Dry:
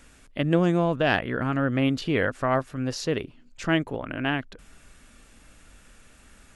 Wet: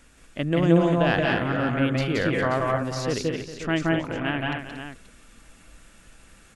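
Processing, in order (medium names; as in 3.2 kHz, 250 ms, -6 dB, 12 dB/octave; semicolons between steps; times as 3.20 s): multi-tap echo 172/178/232/403/442/531 ms -4/-3.5/-6/-13/-18.5/-10 dB; trim -2 dB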